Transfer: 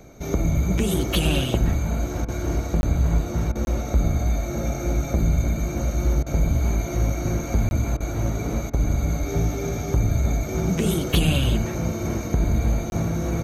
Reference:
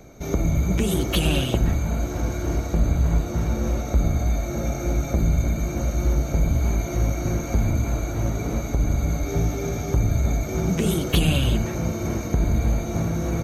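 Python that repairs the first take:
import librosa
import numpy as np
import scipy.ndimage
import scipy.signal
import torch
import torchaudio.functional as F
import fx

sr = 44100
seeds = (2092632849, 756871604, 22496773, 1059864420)

y = fx.fix_interpolate(x, sr, at_s=(2.81, 3.65, 7.69, 12.9), length_ms=21.0)
y = fx.fix_interpolate(y, sr, at_s=(2.25, 3.52, 6.23, 7.97, 8.7), length_ms=32.0)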